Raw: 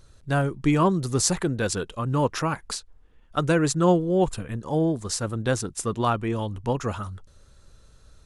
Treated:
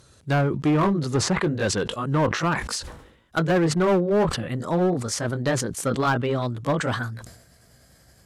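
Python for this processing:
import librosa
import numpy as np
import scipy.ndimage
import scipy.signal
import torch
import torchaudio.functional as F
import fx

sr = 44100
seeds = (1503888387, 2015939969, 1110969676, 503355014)

p1 = fx.pitch_glide(x, sr, semitones=3.5, runs='starting unshifted')
p2 = scipy.signal.sosfilt(scipy.signal.butter(2, 100.0, 'highpass', fs=sr, output='sos'), p1)
p3 = fx.high_shelf(p2, sr, hz=6000.0, db=3.5)
p4 = fx.env_lowpass_down(p3, sr, base_hz=2000.0, full_db=-19.0)
p5 = 10.0 ** (-22.0 / 20.0) * (np.abs((p4 / 10.0 ** (-22.0 / 20.0) + 3.0) % 4.0 - 2.0) - 1.0)
p6 = p4 + (p5 * 10.0 ** (-4.0 / 20.0))
y = fx.sustainer(p6, sr, db_per_s=72.0)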